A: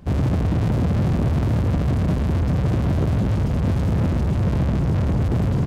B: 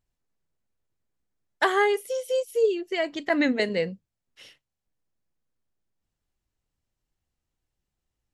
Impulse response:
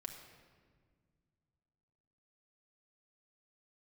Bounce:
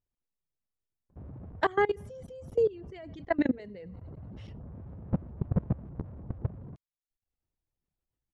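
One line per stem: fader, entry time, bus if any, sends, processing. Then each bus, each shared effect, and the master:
−2.5 dB, 1.10 s, no send, no echo send, low-pass filter 1,100 Hz 12 dB per octave; automatic ducking −19 dB, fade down 1.10 s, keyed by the second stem
−4.0 dB, 0.00 s, no send, echo send −20 dB, tilt shelving filter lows +5.5 dB, about 1,500 Hz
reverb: not used
echo: repeating echo 92 ms, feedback 56%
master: reverb reduction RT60 0.53 s; low-pass filter 6,500 Hz 12 dB per octave; output level in coarse steps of 22 dB

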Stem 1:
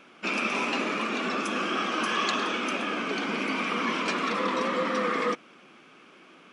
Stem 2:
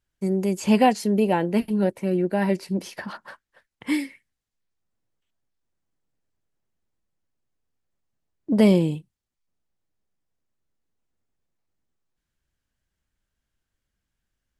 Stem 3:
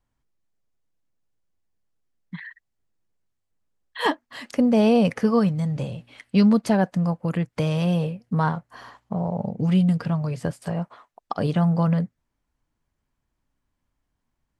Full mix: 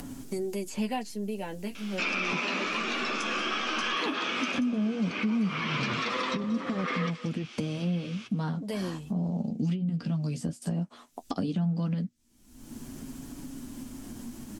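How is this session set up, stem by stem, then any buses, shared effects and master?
−3.5 dB, 1.75 s, bus A, no send, echo send −19 dB, parametric band 5,400 Hz +11.5 dB 2.7 octaves
−2.0 dB, 0.10 s, no bus, no send, no echo send, automatic ducking −14 dB, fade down 1.45 s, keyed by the third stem
−3.5 dB, 0.00 s, bus A, no send, no echo send, octave-band graphic EQ 125/250/500/1,000/2,000/4,000 Hz −5/+11/−6/−8/−9/−6 dB; upward compression, threshold −20 dBFS
bus A: 0.0 dB, treble cut that deepens with the level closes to 980 Hz, closed at −14 dBFS; brickwall limiter −16.5 dBFS, peak gain reduction 9.5 dB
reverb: not used
echo: single-tap delay 182 ms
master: flanger 0.15 Hz, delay 7 ms, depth 6.7 ms, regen −26%; multiband upward and downward compressor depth 70%

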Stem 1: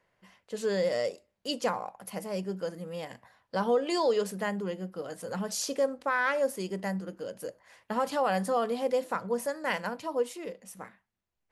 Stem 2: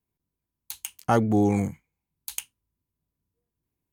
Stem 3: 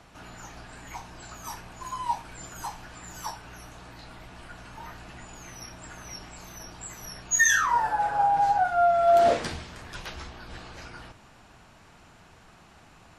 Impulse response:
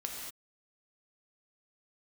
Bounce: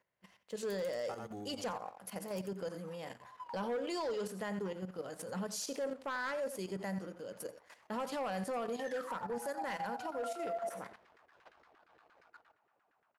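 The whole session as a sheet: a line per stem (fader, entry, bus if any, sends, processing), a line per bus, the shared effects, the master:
−2.0 dB, 0.00 s, no send, echo send −14 dB, high-pass filter 54 Hz; gain into a clipping stage and back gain 22 dB
−8.0 dB, 0.00 s, no send, echo send −16 dB, low-shelf EQ 420 Hz −11 dB; automatic ducking −13 dB, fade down 1.75 s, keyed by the first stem
−10.5 dB, 1.40 s, send −12 dB, no echo send, low-shelf EQ 500 Hz −5 dB; auto-filter band-pass saw down 8.6 Hz 380–1,800 Hz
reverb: on, pre-delay 3 ms
echo: repeating echo 87 ms, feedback 19%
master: leveller curve on the samples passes 1; output level in coarse steps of 11 dB; brickwall limiter −32 dBFS, peak gain reduction 8.5 dB

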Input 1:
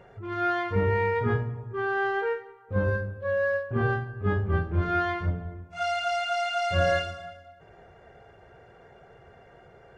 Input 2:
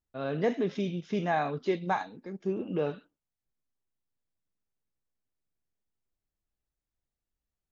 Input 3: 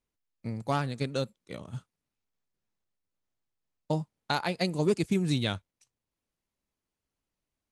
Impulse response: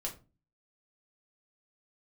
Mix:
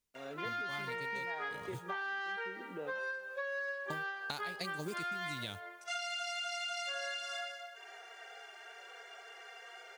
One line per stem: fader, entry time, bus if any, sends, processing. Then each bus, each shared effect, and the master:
+0.5 dB, 0.15 s, bus A, no send, harmonic-percussive split with one part muted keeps harmonic; high-pass filter 430 Hz 24 dB per octave; tilt shelving filter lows −7.5 dB, about 780 Hz
−12.5 dB, 0.00 s, no bus, no send, high-pass filter 210 Hz; bit reduction 10 bits
−6.0 dB, 0.00 s, bus A, no send, noise that follows the level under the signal 28 dB
bus A: 0.0 dB, high-shelf EQ 2,500 Hz +11 dB; downward compressor, threshold −28 dBFS, peak gain reduction 11.5 dB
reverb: not used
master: downward compressor, threshold −37 dBFS, peak gain reduction 10.5 dB

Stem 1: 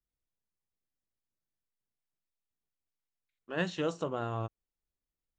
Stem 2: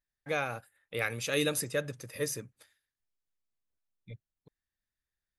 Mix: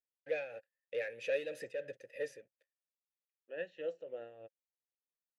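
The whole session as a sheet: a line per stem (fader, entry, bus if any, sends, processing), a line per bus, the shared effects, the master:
+0.5 dB, 0.00 s, no send, no processing
−3.5 dB, 0.00 s, no send, leveller curve on the samples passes 3; automatic ducking −18 dB, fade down 1.30 s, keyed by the first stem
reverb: not used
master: tape wow and flutter 24 cents; amplitude tremolo 3.1 Hz, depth 54%; formant filter e

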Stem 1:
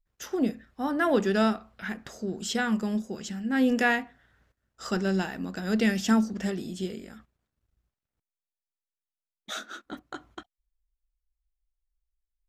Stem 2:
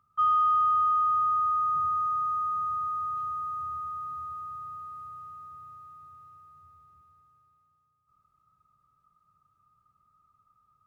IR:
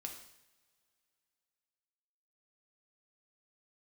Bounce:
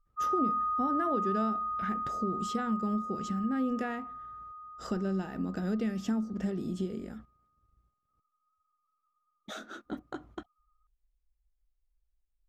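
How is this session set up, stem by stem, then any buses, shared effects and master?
−1.5 dB, 0.00 s, no send, downward compressor 4 to 1, threshold −34 dBFS, peak gain reduction 13.5 dB
−5.5 dB, 0.00 s, no send, spectral peaks only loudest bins 2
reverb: not used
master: tilt shelving filter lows +6.5 dB

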